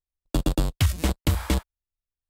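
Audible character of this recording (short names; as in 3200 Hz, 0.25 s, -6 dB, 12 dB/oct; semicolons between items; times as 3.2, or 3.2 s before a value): noise floor -93 dBFS; spectral tilt -5.5 dB/oct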